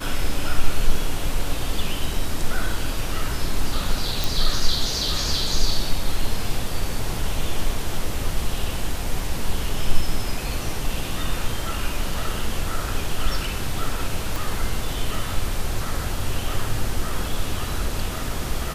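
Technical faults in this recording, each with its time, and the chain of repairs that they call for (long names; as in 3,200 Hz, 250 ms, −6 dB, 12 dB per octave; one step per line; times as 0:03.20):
0:04.24: click
0:14.36: click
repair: click removal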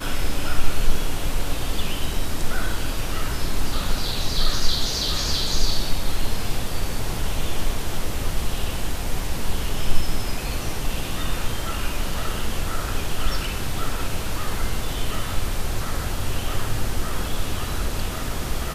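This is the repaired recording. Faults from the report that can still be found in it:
0:14.36: click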